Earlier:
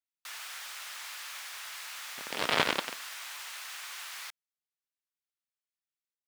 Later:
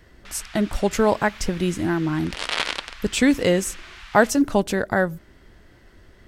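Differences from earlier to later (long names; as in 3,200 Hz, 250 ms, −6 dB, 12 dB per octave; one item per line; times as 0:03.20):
speech: unmuted
first sound: add low-pass filter 2,800 Hz 12 dB per octave
master: add spectral tilt +2.5 dB per octave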